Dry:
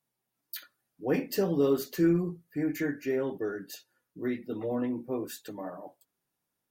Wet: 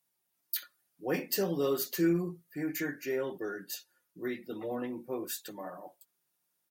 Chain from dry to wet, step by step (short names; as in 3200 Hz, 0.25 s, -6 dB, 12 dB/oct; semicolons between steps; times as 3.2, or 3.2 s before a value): tilt +2 dB/oct; comb 5.6 ms, depth 31%; gain -1.5 dB